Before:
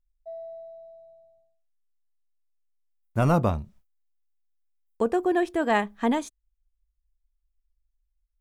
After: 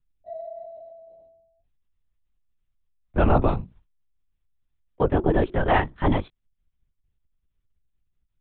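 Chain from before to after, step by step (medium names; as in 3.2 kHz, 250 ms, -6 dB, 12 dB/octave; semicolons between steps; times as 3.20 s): LPC vocoder at 8 kHz whisper; trim +3 dB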